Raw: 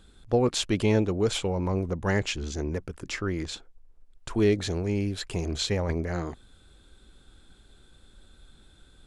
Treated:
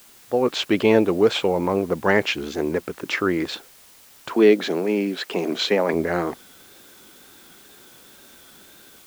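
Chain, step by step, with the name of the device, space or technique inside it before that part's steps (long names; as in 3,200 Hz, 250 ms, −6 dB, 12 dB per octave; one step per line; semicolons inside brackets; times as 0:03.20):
dictaphone (band-pass filter 260–3,300 Hz; automatic gain control gain up to 11 dB; tape wow and flutter; white noise bed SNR 27 dB)
0:04.33–0:05.94: Butterworth high-pass 170 Hz 36 dB per octave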